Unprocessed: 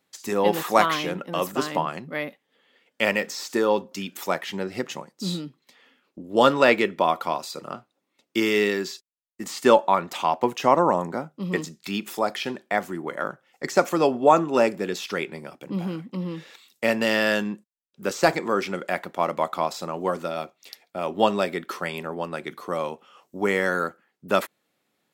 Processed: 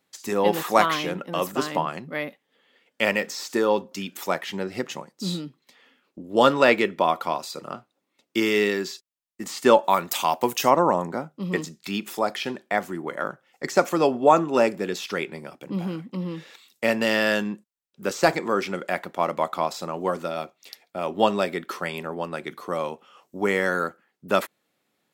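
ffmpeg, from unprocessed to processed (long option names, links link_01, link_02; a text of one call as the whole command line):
ffmpeg -i in.wav -filter_complex "[0:a]asplit=3[link_01][link_02][link_03];[link_01]afade=type=out:start_time=9.83:duration=0.02[link_04];[link_02]aemphasis=mode=production:type=75fm,afade=type=in:start_time=9.83:duration=0.02,afade=type=out:start_time=10.69:duration=0.02[link_05];[link_03]afade=type=in:start_time=10.69:duration=0.02[link_06];[link_04][link_05][link_06]amix=inputs=3:normalize=0" out.wav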